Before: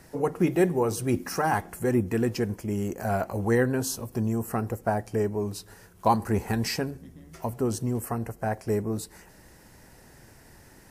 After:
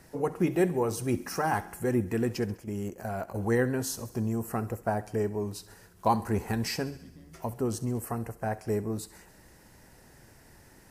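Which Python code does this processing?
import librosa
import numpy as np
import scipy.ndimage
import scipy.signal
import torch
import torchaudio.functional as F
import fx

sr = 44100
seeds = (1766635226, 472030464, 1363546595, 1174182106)

y = fx.echo_thinned(x, sr, ms=67, feedback_pct=64, hz=590.0, wet_db=-17.0)
y = fx.level_steps(y, sr, step_db=10, at=(2.55, 3.36))
y = y * librosa.db_to_amplitude(-3.0)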